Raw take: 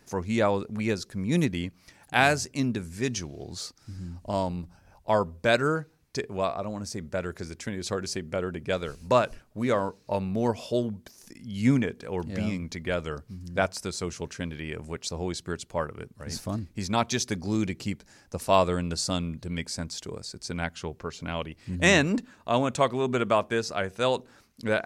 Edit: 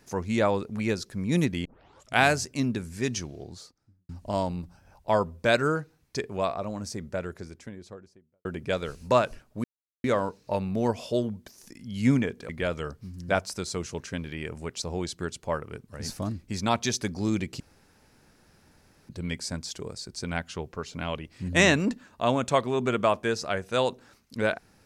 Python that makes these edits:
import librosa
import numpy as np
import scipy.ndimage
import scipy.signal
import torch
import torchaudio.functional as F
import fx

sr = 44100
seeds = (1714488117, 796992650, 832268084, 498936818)

y = fx.studio_fade_out(x, sr, start_s=3.19, length_s=0.9)
y = fx.studio_fade_out(y, sr, start_s=6.8, length_s=1.65)
y = fx.edit(y, sr, fx.tape_start(start_s=1.65, length_s=0.54),
    fx.insert_silence(at_s=9.64, length_s=0.4),
    fx.cut(start_s=12.09, length_s=0.67),
    fx.room_tone_fill(start_s=17.87, length_s=1.49), tone=tone)